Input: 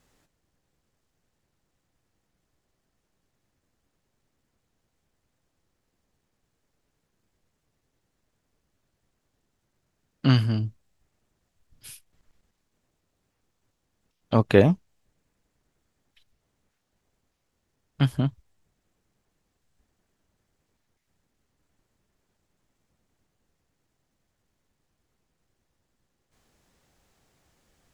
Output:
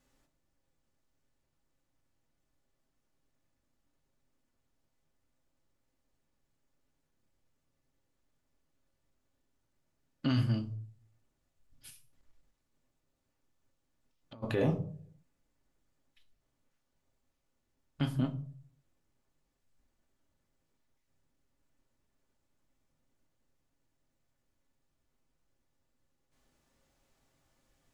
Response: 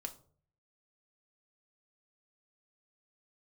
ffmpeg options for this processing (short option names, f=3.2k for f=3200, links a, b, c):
-filter_complex "[1:a]atrim=start_sample=2205[a];[0:a][a]afir=irnorm=-1:irlink=0,alimiter=limit=-16.5dB:level=0:latency=1:release=31,asplit=3[b][c][d];[b]afade=t=out:st=11.89:d=0.02[e];[c]acompressor=threshold=-48dB:ratio=6,afade=t=in:st=11.89:d=0.02,afade=t=out:st=14.42:d=0.02[f];[d]afade=t=in:st=14.42:d=0.02[g];[e][f][g]amix=inputs=3:normalize=0,volume=-4dB"